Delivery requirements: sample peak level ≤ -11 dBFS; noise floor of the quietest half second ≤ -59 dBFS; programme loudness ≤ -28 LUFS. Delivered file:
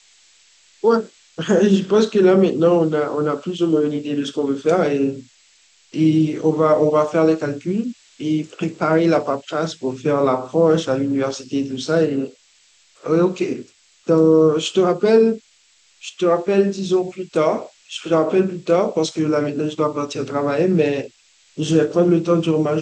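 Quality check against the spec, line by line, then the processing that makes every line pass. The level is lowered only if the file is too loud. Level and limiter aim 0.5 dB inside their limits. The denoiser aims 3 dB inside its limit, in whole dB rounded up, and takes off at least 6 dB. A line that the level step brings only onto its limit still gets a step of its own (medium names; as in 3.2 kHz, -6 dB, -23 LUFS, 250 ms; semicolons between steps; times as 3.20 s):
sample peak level -4.5 dBFS: fail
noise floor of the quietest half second -56 dBFS: fail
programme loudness -18.5 LUFS: fail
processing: trim -10 dB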